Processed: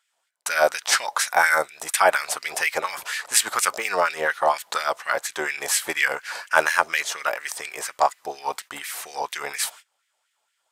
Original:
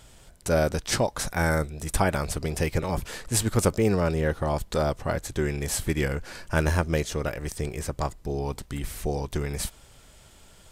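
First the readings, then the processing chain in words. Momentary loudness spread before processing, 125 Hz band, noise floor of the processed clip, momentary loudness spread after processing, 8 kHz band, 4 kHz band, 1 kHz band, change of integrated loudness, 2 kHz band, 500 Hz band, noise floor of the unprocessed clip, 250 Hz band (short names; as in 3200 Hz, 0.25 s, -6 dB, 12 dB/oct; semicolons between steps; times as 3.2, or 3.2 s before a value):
8 LU, -28.0 dB, -75 dBFS, 12 LU, +7.0 dB, +7.5 dB, +9.5 dB, +4.0 dB, +11.0 dB, +0.5 dB, -53 dBFS, -14.5 dB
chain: LFO high-pass sine 4.2 Hz 710–2100 Hz; gate -47 dBFS, range -26 dB; gain +6.5 dB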